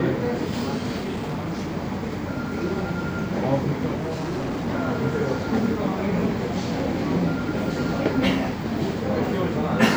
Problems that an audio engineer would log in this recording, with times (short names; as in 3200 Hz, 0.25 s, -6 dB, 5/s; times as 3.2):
0.98–1.77 clipped -24.5 dBFS
3.94–4.68 clipped -24 dBFS